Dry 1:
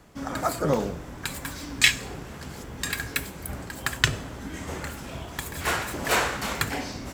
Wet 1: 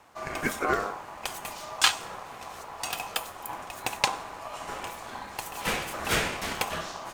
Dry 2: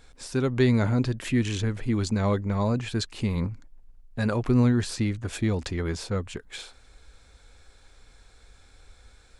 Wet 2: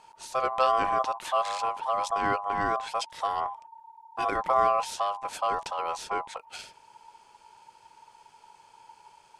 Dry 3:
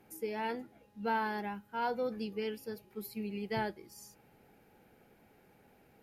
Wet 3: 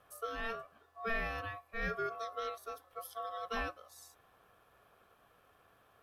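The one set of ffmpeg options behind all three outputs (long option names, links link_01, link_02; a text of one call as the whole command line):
ffmpeg -i in.wav -af "aeval=exprs='val(0)*sin(2*PI*910*n/s)':channel_layout=same" out.wav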